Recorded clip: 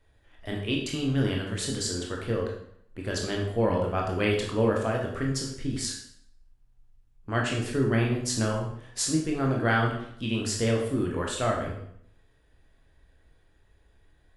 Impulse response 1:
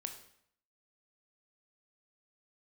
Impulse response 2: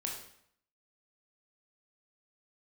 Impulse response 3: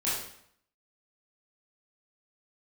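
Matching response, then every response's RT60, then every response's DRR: 2; 0.65, 0.65, 0.65 s; 5.0, -1.0, -10.0 dB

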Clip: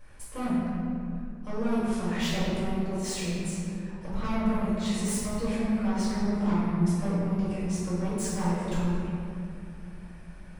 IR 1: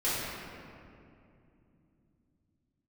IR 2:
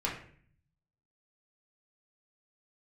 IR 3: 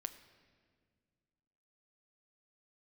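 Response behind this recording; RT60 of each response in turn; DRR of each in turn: 1; 2.6, 0.50, 1.9 s; -11.5, -5.0, 9.5 dB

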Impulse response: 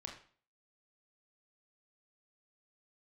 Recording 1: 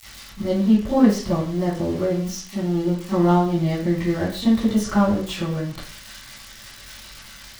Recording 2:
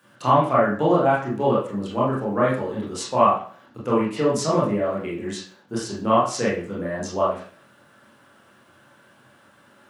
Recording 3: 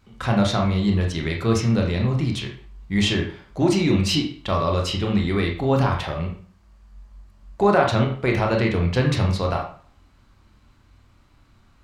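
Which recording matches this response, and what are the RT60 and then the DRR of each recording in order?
3; 0.45, 0.45, 0.45 s; -16.5, -7.0, 0.5 dB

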